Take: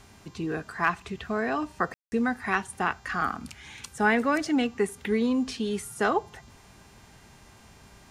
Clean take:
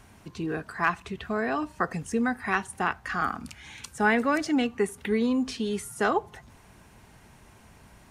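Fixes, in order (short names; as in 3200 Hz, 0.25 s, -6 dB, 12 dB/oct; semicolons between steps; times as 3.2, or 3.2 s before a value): de-hum 398.6 Hz, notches 19; room tone fill 1.94–2.12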